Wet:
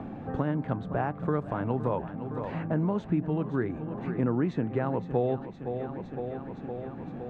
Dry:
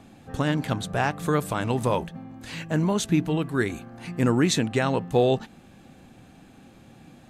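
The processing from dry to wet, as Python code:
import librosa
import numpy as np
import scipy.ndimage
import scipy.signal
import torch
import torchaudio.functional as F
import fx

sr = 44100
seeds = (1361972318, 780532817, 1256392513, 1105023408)

p1 = scipy.signal.sosfilt(scipy.signal.butter(2, 1200.0, 'lowpass', fs=sr, output='sos'), x)
p2 = p1 + fx.echo_feedback(p1, sr, ms=513, feedback_pct=57, wet_db=-14.0, dry=0)
p3 = fx.band_squash(p2, sr, depth_pct=70)
y = p3 * 10.0 ** (-4.5 / 20.0)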